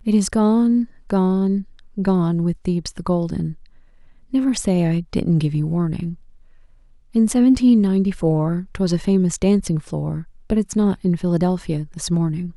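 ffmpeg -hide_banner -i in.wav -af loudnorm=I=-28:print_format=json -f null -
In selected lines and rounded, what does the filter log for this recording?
"input_i" : "-20.0",
"input_tp" : "-5.4",
"input_lra" : "2.6",
"input_thresh" : "-30.5",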